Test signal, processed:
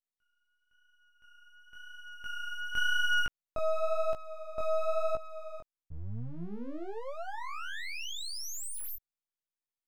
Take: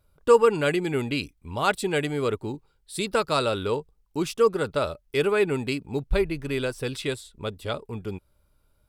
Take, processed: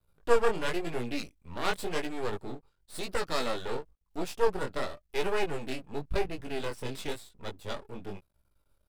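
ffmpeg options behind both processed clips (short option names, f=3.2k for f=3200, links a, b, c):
-af "aeval=exprs='max(val(0),0)':c=same,flanger=delay=16.5:depth=6.9:speed=0.95"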